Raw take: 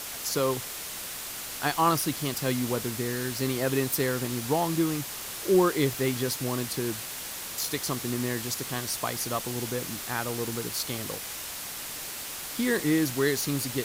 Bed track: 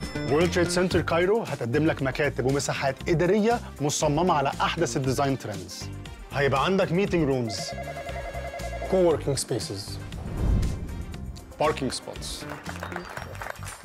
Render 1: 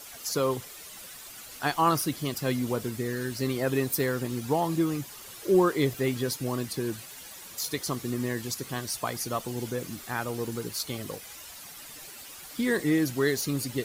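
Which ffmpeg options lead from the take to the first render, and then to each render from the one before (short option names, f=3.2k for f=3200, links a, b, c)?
-af "afftdn=nr=11:nf=-38"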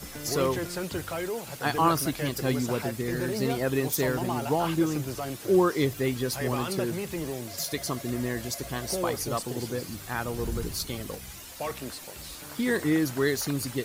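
-filter_complex "[1:a]volume=-10dB[a];[0:a][a]amix=inputs=2:normalize=0"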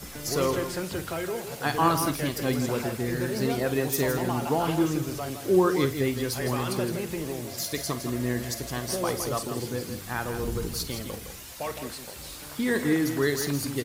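-filter_complex "[0:a]asplit=2[a][b];[b]adelay=49,volume=-13dB[c];[a][c]amix=inputs=2:normalize=0,aecho=1:1:163:0.376"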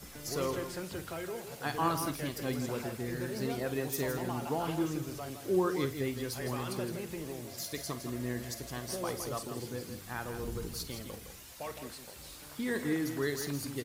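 -af "volume=-8dB"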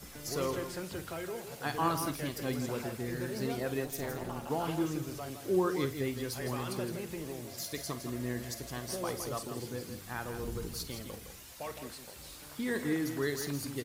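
-filter_complex "[0:a]asplit=3[a][b][c];[a]afade=t=out:st=3.84:d=0.02[d];[b]tremolo=f=280:d=0.857,afade=t=in:st=3.84:d=0.02,afade=t=out:st=4.49:d=0.02[e];[c]afade=t=in:st=4.49:d=0.02[f];[d][e][f]amix=inputs=3:normalize=0"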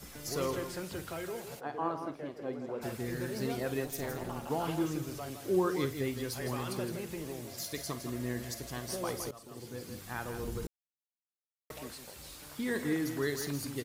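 -filter_complex "[0:a]asplit=3[a][b][c];[a]afade=t=out:st=1.59:d=0.02[d];[b]bandpass=f=540:t=q:w=0.95,afade=t=in:st=1.59:d=0.02,afade=t=out:st=2.81:d=0.02[e];[c]afade=t=in:st=2.81:d=0.02[f];[d][e][f]amix=inputs=3:normalize=0,asplit=4[g][h][i][j];[g]atrim=end=9.31,asetpts=PTS-STARTPTS,afade=t=out:st=9.306:d=0.004:c=hsin:silence=0.11885[k];[h]atrim=start=9.31:end=10.67,asetpts=PTS-STARTPTS,afade=t=in:d=0.7:silence=0.11885,afade=t=out:st=1.356:d=0.004:c=hsin[l];[i]atrim=start=10.67:end=11.7,asetpts=PTS-STARTPTS,volume=0[m];[j]atrim=start=11.7,asetpts=PTS-STARTPTS,afade=t=in:d=0.004:c=hsin[n];[k][l][m][n]concat=n=4:v=0:a=1"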